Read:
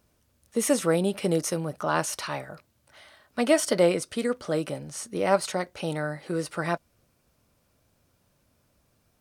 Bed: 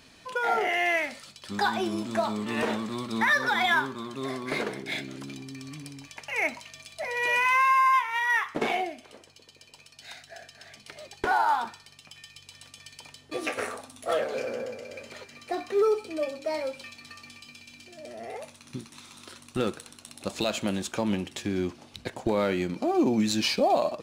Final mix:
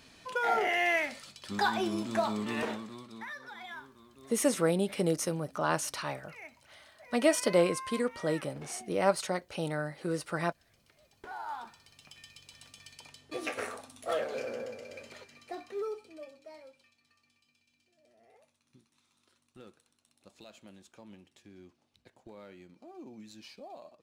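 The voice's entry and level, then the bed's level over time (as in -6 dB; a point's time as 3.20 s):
3.75 s, -4.0 dB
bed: 2.47 s -2.5 dB
3.36 s -21 dB
11.20 s -21 dB
12.03 s -5 dB
15.03 s -5 dB
16.97 s -24.5 dB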